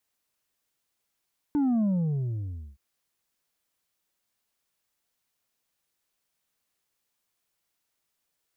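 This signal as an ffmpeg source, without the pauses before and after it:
ffmpeg -f lavfi -i "aevalsrc='0.0794*clip((1.22-t)/0.95,0,1)*tanh(1.58*sin(2*PI*300*1.22/log(65/300)*(exp(log(65/300)*t/1.22)-1)))/tanh(1.58)':duration=1.22:sample_rate=44100" out.wav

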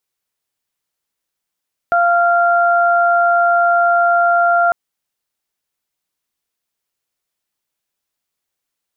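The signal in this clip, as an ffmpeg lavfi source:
ffmpeg -f lavfi -i "aevalsrc='0.251*sin(2*PI*693*t)+0.2*sin(2*PI*1386*t)':duration=2.8:sample_rate=44100" out.wav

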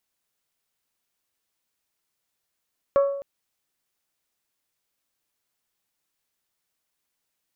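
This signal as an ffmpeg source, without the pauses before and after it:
ffmpeg -f lavfi -i "aevalsrc='0.211*pow(10,-3*t/0.78)*sin(2*PI*558*t)+0.0668*pow(10,-3*t/0.48)*sin(2*PI*1116*t)+0.0211*pow(10,-3*t/0.423)*sin(2*PI*1339.2*t)+0.00668*pow(10,-3*t/0.362)*sin(2*PI*1674*t)+0.00211*pow(10,-3*t/0.296)*sin(2*PI*2232*t)':duration=0.26:sample_rate=44100" out.wav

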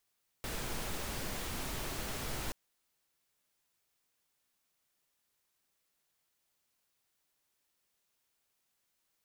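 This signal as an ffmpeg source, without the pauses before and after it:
ffmpeg -f lavfi -i "anoisesrc=color=pink:amplitude=0.061:duration=2.08:sample_rate=44100:seed=1" out.wav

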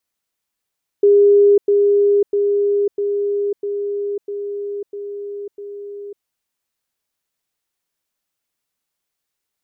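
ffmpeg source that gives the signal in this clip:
ffmpeg -f lavfi -i "aevalsrc='pow(10,(-7.5-3*floor(t/0.65))/20)*sin(2*PI*406*t)*clip(min(mod(t,0.65),0.55-mod(t,0.65))/0.005,0,1)':duration=5.2:sample_rate=44100" out.wav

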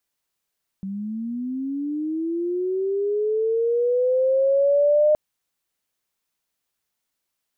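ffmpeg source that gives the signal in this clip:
ffmpeg -f lavfi -i "aevalsrc='pow(10,(-27+13.5*t/4.32)/20)*sin(2*PI*(190*t+420*t*t/(2*4.32)))':duration=4.32:sample_rate=44100" out.wav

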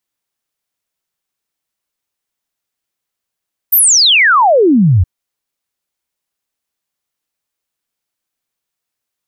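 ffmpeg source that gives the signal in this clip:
ffmpeg -f lavfi -i "aevalsrc='0.531*clip(min(t,1.32-t)/0.01,0,1)*sin(2*PI*15000*1.32/log(81/15000)*(exp(log(81/15000)*t/1.32)-1))':duration=1.32:sample_rate=44100" out.wav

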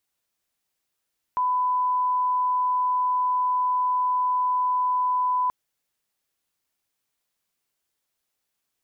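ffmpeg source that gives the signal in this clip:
ffmpeg -f lavfi -i "sine=frequency=1000:duration=4.13:sample_rate=44100,volume=-1.94dB" out.wav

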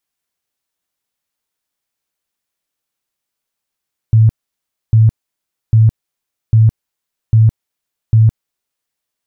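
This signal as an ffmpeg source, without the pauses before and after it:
ffmpeg -f lavfi -i "aevalsrc='0.596*sin(2*PI*111*mod(t,0.8))*lt(mod(t,0.8),18/111)':duration=4.8:sample_rate=44100" out.wav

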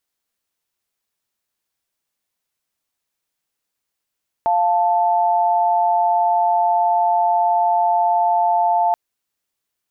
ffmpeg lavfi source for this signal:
ffmpeg -f lavfi -i "aevalsrc='0.15*(sin(2*PI*698.46*t)+sin(2*PI*880*t))':duration=4.48:sample_rate=44100" out.wav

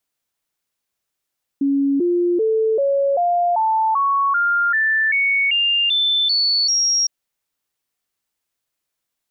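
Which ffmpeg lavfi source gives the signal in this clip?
ffmpeg -f lavfi -i "aevalsrc='0.188*clip(min(mod(t,0.39),0.39-mod(t,0.39))/0.005,0,1)*sin(2*PI*278*pow(2,floor(t/0.39)/3)*mod(t,0.39))':duration=5.46:sample_rate=44100" out.wav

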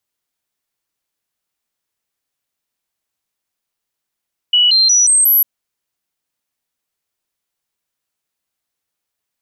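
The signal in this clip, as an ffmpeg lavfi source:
ffmpeg -f lavfi -i "aevalsrc='0.398*clip(min(mod(t,0.18),0.18-mod(t,0.18))/0.005,0,1)*sin(2*PI*2940*pow(2,floor(t/0.18)/2)*mod(t,0.18))':duration=0.9:sample_rate=44100" out.wav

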